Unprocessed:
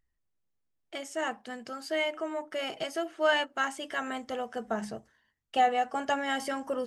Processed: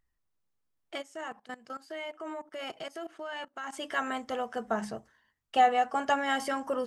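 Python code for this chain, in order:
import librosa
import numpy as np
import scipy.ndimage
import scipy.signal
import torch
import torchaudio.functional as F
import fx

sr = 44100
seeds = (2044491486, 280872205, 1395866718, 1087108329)

y = fx.peak_eq(x, sr, hz=1100.0, db=4.5, octaves=0.95)
y = fx.level_steps(y, sr, step_db=19, at=(1.01, 3.72), fade=0.02)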